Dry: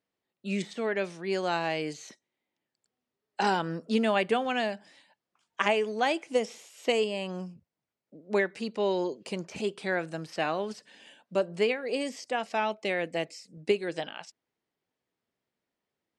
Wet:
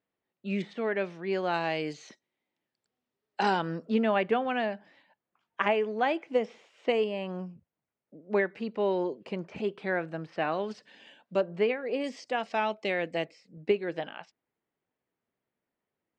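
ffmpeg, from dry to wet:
-af "asetnsamples=n=441:p=0,asendcmd='1.54 lowpass f 4800;3.89 lowpass f 2400;10.52 lowpass f 4300;11.41 lowpass f 2300;12.04 lowpass f 4800;13.26 lowpass f 2500',lowpass=2.9k"

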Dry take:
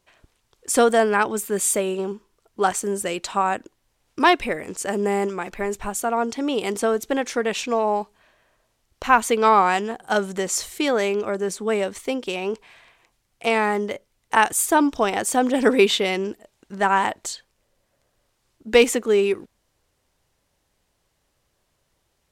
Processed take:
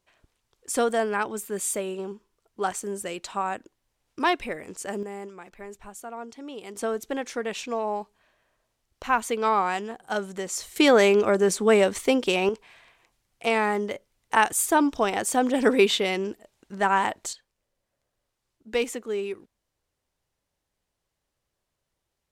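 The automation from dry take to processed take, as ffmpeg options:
-af "asetnsamples=n=441:p=0,asendcmd='5.03 volume volume -15dB;6.77 volume volume -7dB;10.76 volume volume 4dB;12.49 volume volume -3dB;17.33 volume volume -11dB',volume=-7dB"

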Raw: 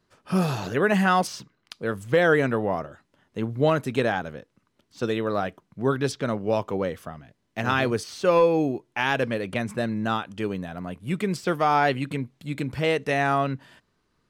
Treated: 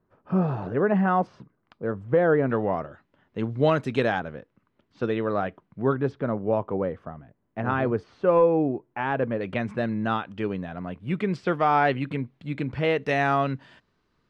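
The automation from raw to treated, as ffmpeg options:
-af "asetnsamples=n=441:p=0,asendcmd='2.5 lowpass f 2800;3.39 lowpass f 4900;4.2 lowpass f 2400;5.93 lowpass f 1300;9.41 lowpass f 2900;13.06 lowpass f 5000',lowpass=1.1k"

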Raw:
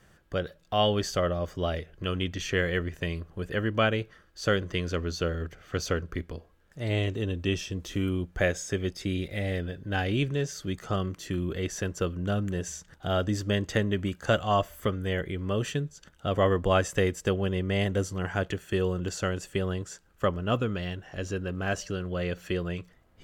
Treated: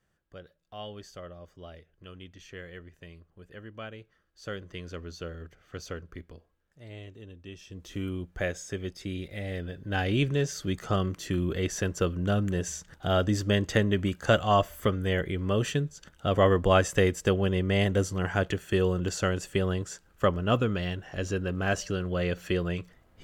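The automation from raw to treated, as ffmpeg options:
-af "volume=9dB,afade=t=in:st=3.96:d=0.95:silence=0.446684,afade=t=out:st=6.29:d=0.61:silence=0.446684,afade=t=in:st=7.57:d=0.41:silence=0.266073,afade=t=in:st=9.47:d=0.83:silence=0.446684"

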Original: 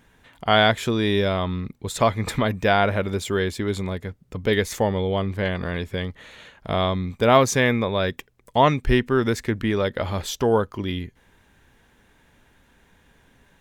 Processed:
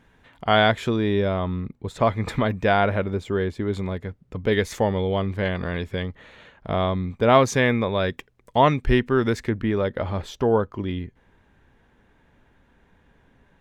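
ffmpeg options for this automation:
-af "asetnsamples=n=441:p=0,asendcmd='0.96 lowpass f 1300;2.07 lowpass f 2600;3.04 lowpass f 1100;3.73 lowpass f 2400;4.55 lowpass f 4600;6.03 lowpass f 1900;7.29 lowpass f 4000;9.49 lowpass f 1500',lowpass=f=3.1k:p=1"

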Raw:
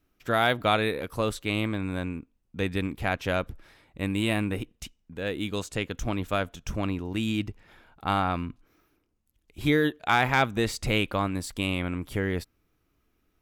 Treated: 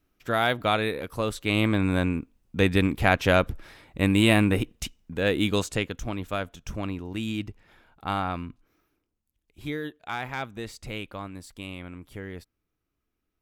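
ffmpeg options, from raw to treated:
-af "volume=7dB,afade=t=in:st=1.32:d=0.47:silence=0.421697,afade=t=out:st=5.51:d=0.49:silence=0.334965,afade=t=out:st=8.29:d=1.5:silence=0.421697"

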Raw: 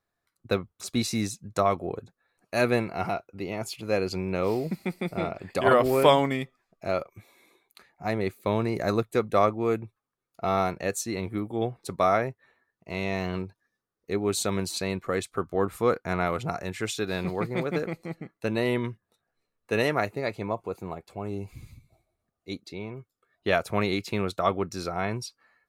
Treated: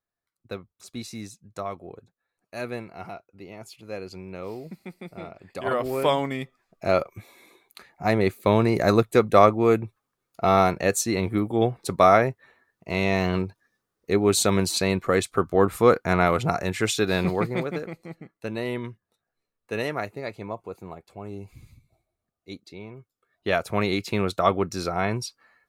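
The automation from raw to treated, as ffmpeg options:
-af "volume=14dB,afade=t=in:st=5.4:d=0.94:silence=0.446684,afade=t=in:st=6.34:d=0.61:silence=0.375837,afade=t=out:st=17.23:d=0.57:silence=0.316228,afade=t=in:st=22.98:d=1.37:silence=0.421697"

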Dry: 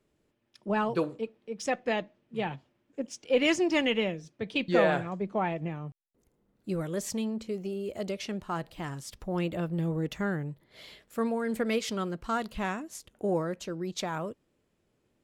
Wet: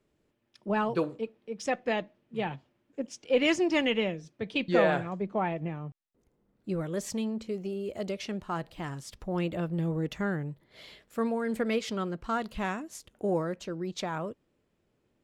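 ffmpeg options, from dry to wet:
-af "asetnsamples=n=441:p=0,asendcmd='5.26 lowpass f 3700;6.94 lowpass f 7600;11.68 lowpass f 4500;12.46 lowpass f 11000;13.53 lowpass f 5000',lowpass=f=7.3k:p=1"

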